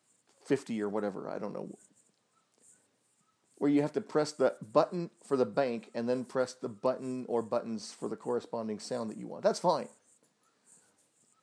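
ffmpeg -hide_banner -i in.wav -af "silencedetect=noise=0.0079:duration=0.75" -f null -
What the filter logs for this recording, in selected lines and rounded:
silence_start: 1.74
silence_end: 3.61 | silence_duration: 1.87
silence_start: 9.86
silence_end: 11.42 | silence_duration: 1.56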